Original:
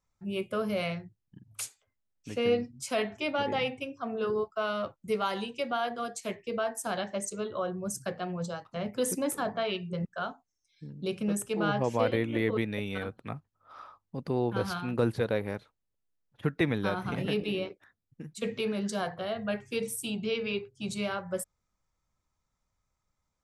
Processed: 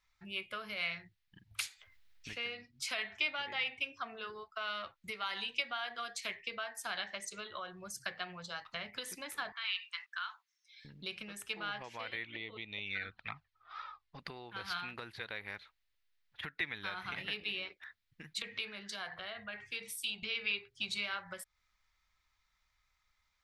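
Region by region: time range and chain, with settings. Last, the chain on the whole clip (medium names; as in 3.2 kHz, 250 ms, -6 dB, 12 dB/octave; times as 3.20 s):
1.51–2.33 s: bass shelf 280 Hz +7 dB + upward compressor, threshold -55 dBFS
9.52–10.85 s: elliptic high-pass 990 Hz, stop band 60 dB + compression 3:1, threshold -44 dBFS
12.24–14.19 s: low-pass 5.9 kHz 24 dB/octave + touch-sensitive flanger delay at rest 3.2 ms, full sweep at -28 dBFS
18.42–20.23 s: compression 3:1, threshold -42 dBFS + three bands expanded up and down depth 70%
whole clip: compression 6:1, threshold -39 dBFS; ten-band graphic EQ 125 Hz -11 dB, 250 Hz -10 dB, 500 Hz -9 dB, 2 kHz +10 dB, 4 kHz +9 dB, 8 kHz -6 dB; trim +2 dB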